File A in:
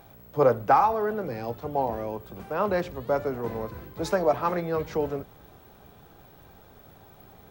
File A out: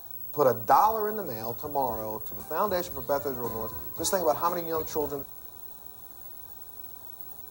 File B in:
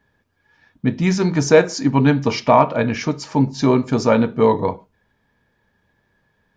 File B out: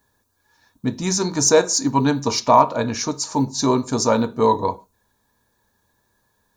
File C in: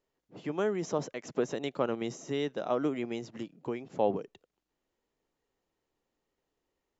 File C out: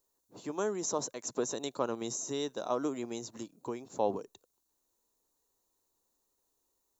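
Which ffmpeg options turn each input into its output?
-af "aexciter=amount=5.9:drive=4.9:freq=3400,equalizer=f=160:t=o:w=0.33:g=-9,equalizer=f=1000:t=o:w=0.33:g=7,equalizer=f=2000:t=o:w=0.33:g=-5,equalizer=f=3150:t=o:w=0.33:g=-11,equalizer=f=5000:t=o:w=0.33:g=-8,volume=0.708"

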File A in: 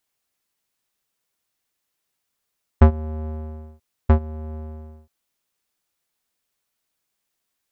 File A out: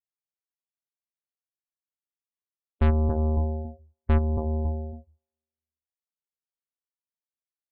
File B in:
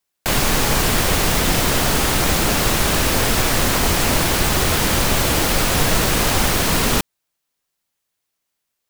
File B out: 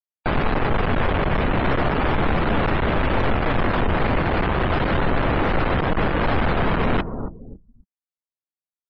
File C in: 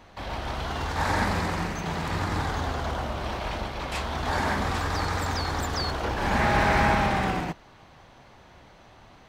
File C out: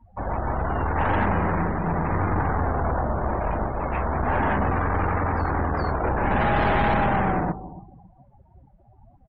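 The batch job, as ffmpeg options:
-filter_complex "[0:a]lowpass=1600,asplit=2[s0][s1];[s1]adelay=277,lowpass=f=1100:p=1,volume=0.158,asplit=2[s2][s3];[s3]adelay=277,lowpass=f=1100:p=1,volume=0.35,asplit=2[s4][s5];[s5]adelay=277,lowpass=f=1100:p=1,volume=0.35[s6];[s2][s4][s6]amix=inputs=3:normalize=0[s7];[s0][s7]amix=inputs=2:normalize=0,aeval=exprs='(tanh(22.4*val(0)+0.4)-tanh(0.4))/22.4':c=same,afftdn=nr=32:nf=-43,volume=2.82"

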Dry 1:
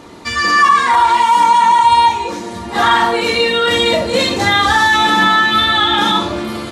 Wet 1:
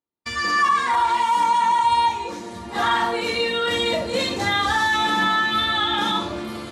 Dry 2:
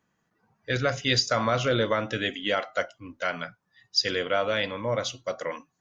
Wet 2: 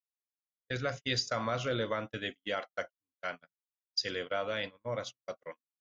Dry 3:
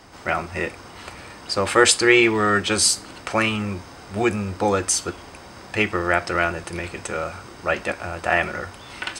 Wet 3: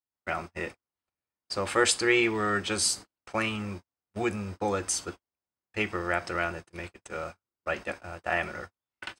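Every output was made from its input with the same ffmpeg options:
-af "agate=range=0.00398:threshold=0.0355:ratio=16:detection=peak,volume=0.376"

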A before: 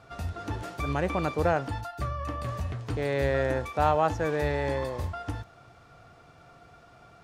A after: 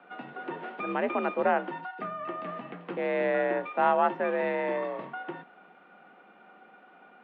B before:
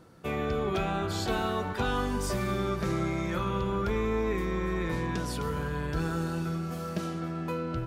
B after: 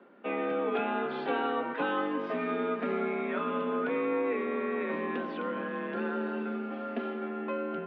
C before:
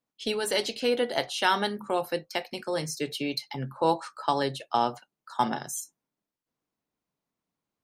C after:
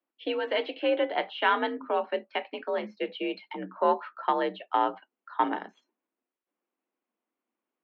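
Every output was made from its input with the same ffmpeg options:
-af "aeval=exprs='0.335*(cos(1*acos(clip(val(0)/0.335,-1,1)))-cos(1*PI/2))+0.0299*(cos(2*acos(clip(val(0)/0.335,-1,1)))-cos(2*PI/2))':c=same,highpass=f=170:t=q:w=0.5412,highpass=f=170:t=q:w=1.307,lowpass=f=3000:t=q:w=0.5176,lowpass=f=3000:t=q:w=0.7071,lowpass=f=3000:t=q:w=1.932,afreqshift=54"

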